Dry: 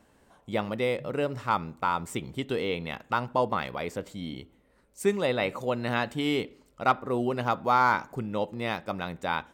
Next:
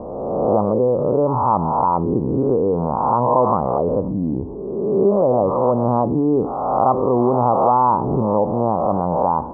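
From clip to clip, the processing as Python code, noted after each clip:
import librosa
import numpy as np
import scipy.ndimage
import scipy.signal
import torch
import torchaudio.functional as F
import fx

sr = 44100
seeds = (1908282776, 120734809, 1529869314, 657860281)

y = fx.spec_swells(x, sr, rise_s=0.88)
y = scipy.signal.sosfilt(scipy.signal.butter(12, 1100.0, 'lowpass', fs=sr, output='sos'), y)
y = fx.env_flatten(y, sr, amount_pct=50)
y = F.gain(torch.from_numpy(y), 6.5).numpy()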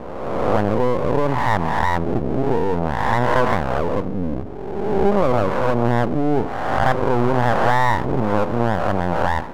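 y = np.maximum(x, 0.0)
y = F.gain(torch.from_numpy(y), 2.5).numpy()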